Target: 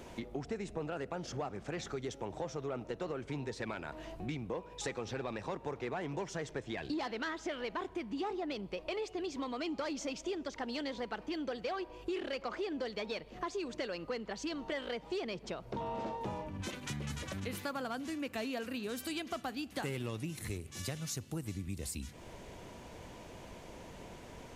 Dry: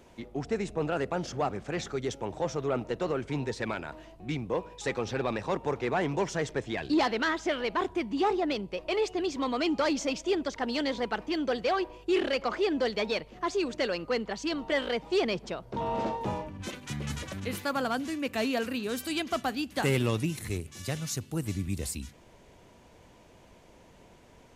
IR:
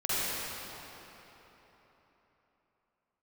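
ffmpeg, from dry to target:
-filter_complex "[0:a]acompressor=threshold=0.00562:ratio=4,asplit=2[s0][s1];[1:a]atrim=start_sample=2205,adelay=6[s2];[s1][s2]afir=irnorm=-1:irlink=0,volume=0.0178[s3];[s0][s3]amix=inputs=2:normalize=0,volume=2"

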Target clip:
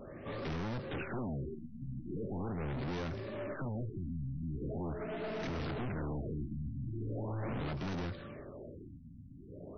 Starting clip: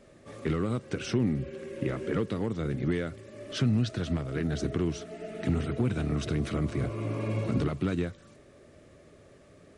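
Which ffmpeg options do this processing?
-af "aeval=exprs='(tanh(178*val(0)+0.25)-tanh(0.25))/178':c=same,afftfilt=real='re*lt(b*sr/1024,260*pow(6400/260,0.5+0.5*sin(2*PI*0.41*pts/sr)))':imag='im*lt(b*sr/1024,260*pow(6400/260,0.5+0.5*sin(2*PI*0.41*pts/sr)))':win_size=1024:overlap=0.75,volume=2.66"

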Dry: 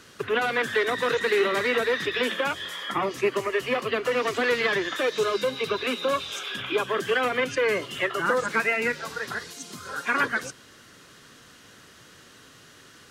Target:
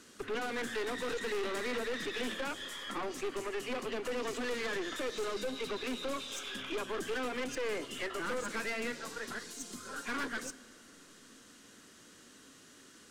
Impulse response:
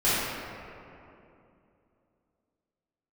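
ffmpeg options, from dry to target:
-filter_complex "[0:a]equalizer=f=125:t=o:w=1:g=-7,equalizer=f=250:t=o:w=1:g=10,equalizer=f=8000:t=o:w=1:g=8,aeval=exprs='(tanh(17.8*val(0)+0.4)-tanh(0.4))/17.8':c=same,asplit=2[s0][s1];[1:a]atrim=start_sample=2205[s2];[s1][s2]afir=irnorm=-1:irlink=0,volume=0.0237[s3];[s0][s3]amix=inputs=2:normalize=0,volume=0.398"

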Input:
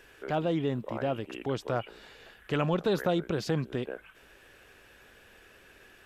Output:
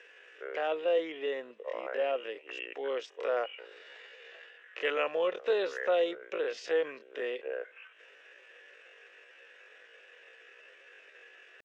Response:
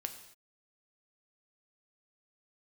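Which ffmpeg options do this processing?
-af "highpass=f=430:w=0.5412,highpass=f=430:w=1.3066,equalizer=f=490:t=q:w=4:g=8,equalizer=f=850:t=q:w=4:g=-5,equalizer=f=1900:t=q:w=4:g=8,equalizer=f=2700:t=q:w=4:g=7,equalizer=f=4400:t=q:w=4:g=-7,lowpass=f=6400:w=0.5412,lowpass=f=6400:w=1.3066,atempo=0.52,volume=0.75"

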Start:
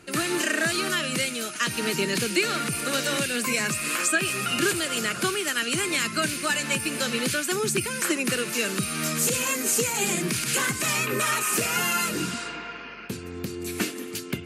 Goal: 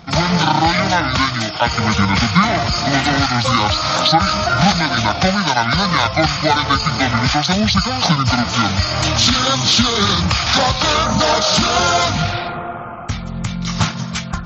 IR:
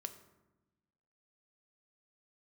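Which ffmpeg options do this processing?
-af "asetrate=22050,aresample=44100,atempo=2,acontrast=57,volume=1.78"

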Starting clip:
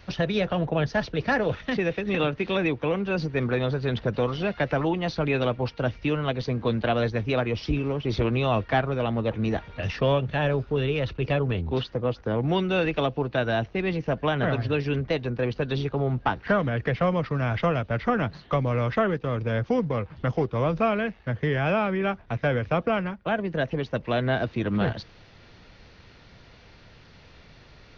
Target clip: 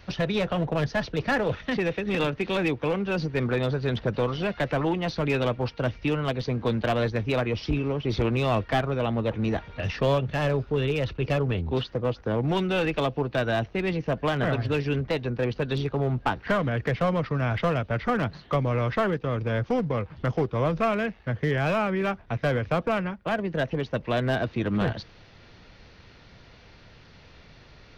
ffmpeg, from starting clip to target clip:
-af "aeval=exprs='clip(val(0),-1,0.0891)':c=same"

